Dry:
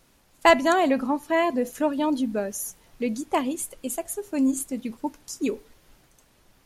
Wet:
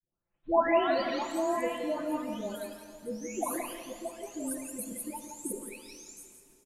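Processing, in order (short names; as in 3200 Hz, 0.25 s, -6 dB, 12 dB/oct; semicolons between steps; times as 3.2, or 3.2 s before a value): spectral delay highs late, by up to 0.886 s; expander -53 dBFS; echo 0.171 s -8 dB; on a send at -8 dB: reverb RT60 2.5 s, pre-delay 39 ms; on the sum: gain -6.5 dB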